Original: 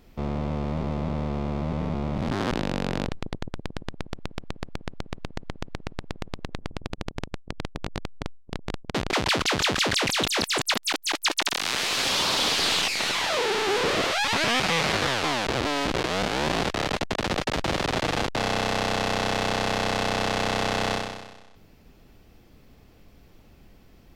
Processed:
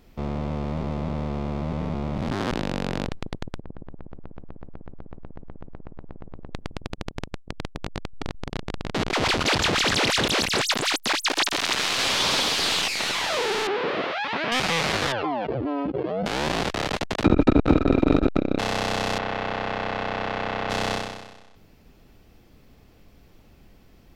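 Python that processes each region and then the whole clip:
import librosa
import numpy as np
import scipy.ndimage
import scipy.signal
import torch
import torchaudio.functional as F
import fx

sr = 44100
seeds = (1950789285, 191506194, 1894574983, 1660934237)

y = fx.chain(x, sr, fx.lowpass(hz=1200.0, slope=12),
    fx.over_compress(threshold_db=-33.0, ratio=-0.5), at=(3.6, 6.55))
y = fx.chain(y, sr, fx.reverse_delay(ms=214, wet_db=-1.0),
    fx.high_shelf(hz=10000.0, db=-5.5), at=(7.92, 12.41))
y = fx.chain(y, sr, fx.highpass(hz=180.0, slope=12),
    fx.air_absorb(metres=320.0), at=(13.67, 14.52))
y = fx.chain(y, sr, fx.spec_expand(power=2.8),
    fx.highpass(hz=91.0, slope=12),
    fx.notch(hz=3800.0, q=14.0), at=(15.12, 16.26))
y = fx.chain(y, sr, fx.tilt_eq(slope=-3.5),
    fx.small_body(hz=(280.0, 1300.0, 2400.0, 3800.0), ring_ms=45, db=18),
    fx.transformer_sat(knee_hz=390.0), at=(17.24, 18.59))
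y = fx.chain(y, sr, fx.lowpass(hz=2400.0, slope=12),
    fx.low_shelf(hz=490.0, db=-4.5), at=(19.18, 20.7))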